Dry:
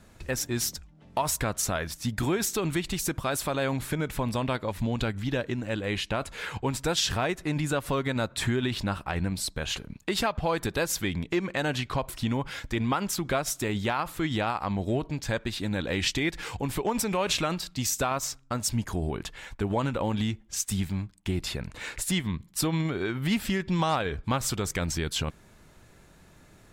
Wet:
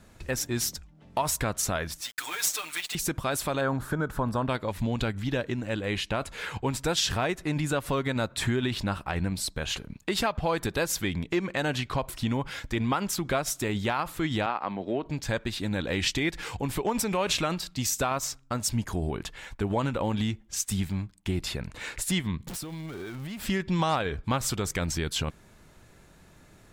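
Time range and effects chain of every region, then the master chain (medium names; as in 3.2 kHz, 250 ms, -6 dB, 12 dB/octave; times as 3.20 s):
2.01–2.95 s: high-pass 1.3 kHz + companded quantiser 4-bit + comb 6.6 ms, depth 93%
3.61–4.49 s: resonant high shelf 1.8 kHz -7 dB, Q 3 + tape noise reduction on one side only encoder only
14.46–15.06 s: median filter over 5 samples + three-band isolator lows -19 dB, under 200 Hz, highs -22 dB, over 4.2 kHz
22.47–23.46 s: jump at every zero crossing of -31.5 dBFS + compression 10:1, threshold -34 dBFS
whole clip: none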